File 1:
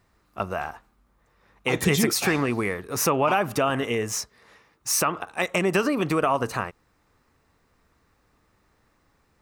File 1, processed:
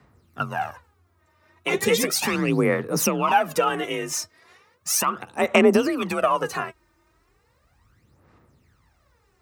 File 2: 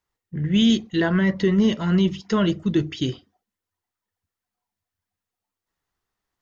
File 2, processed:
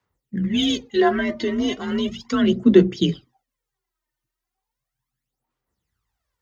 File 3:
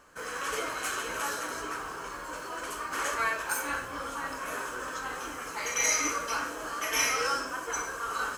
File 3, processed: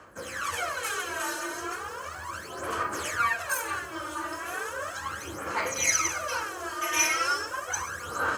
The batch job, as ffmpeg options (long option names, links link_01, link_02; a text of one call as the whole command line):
ffmpeg -i in.wav -af "aphaser=in_gain=1:out_gain=1:delay=3.4:decay=0.69:speed=0.36:type=sinusoidal,afreqshift=39,volume=-1.5dB" out.wav